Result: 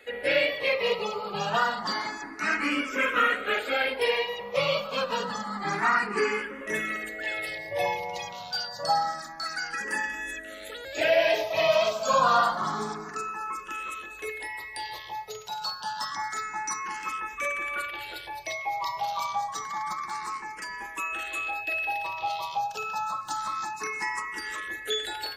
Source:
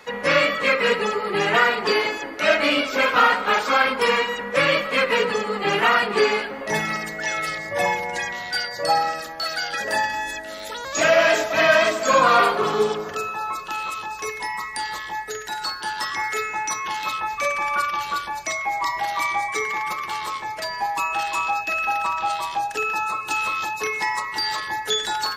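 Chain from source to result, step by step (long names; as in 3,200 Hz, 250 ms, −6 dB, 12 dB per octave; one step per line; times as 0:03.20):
frequency shifter mixed with the dry sound +0.28 Hz
level −4 dB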